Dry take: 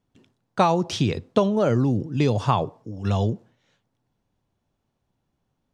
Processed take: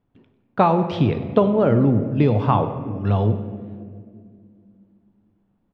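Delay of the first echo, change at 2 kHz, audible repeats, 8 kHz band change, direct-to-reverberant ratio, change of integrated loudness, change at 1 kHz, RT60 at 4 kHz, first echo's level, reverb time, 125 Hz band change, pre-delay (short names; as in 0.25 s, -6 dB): 97 ms, 0.0 dB, 1, under -20 dB, 8.5 dB, +3.5 dB, +3.0 dB, 1.2 s, -16.5 dB, 2.2 s, +4.0 dB, 3 ms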